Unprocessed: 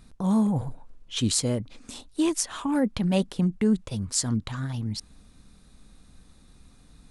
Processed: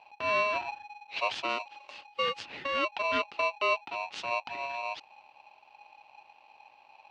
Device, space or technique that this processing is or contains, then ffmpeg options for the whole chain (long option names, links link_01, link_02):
ring modulator pedal into a guitar cabinet: -filter_complex "[0:a]aeval=exprs='val(0)*sgn(sin(2*PI*830*n/s))':channel_layout=same,highpass=100,equalizer=frequency=160:width_type=q:width=4:gain=-4,equalizer=frequency=870:width_type=q:width=4:gain=3,equalizer=frequency=2700:width_type=q:width=4:gain=9,lowpass=frequency=4100:width=0.5412,lowpass=frequency=4100:width=1.3066,asettb=1/sr,asplit=3[link_01][link_02][link_03];[link_01]atrim=end=1.494[link_04];[link_02]atrim=start=1.49:end=2.07,asetpts=PTS-STARTPTS,afade=type=in:duration=0.004:curve=qsin,afade=type=out:start_time=0.576:duration=0.004:curve=qsin,bass=frequency=250:gain=-7,treble=frequency=4000:gain=5[link_05];[link_03]atrim=start=2.066[link_06];[link_04][link_05]acrossfade=duration=0.004:curve1=hsin:curve2=qsin[link_07];[link_07][link_06]acrossfade=duration=0.004:curve1=qsin:curve2=hsin,volume=-7.5dB"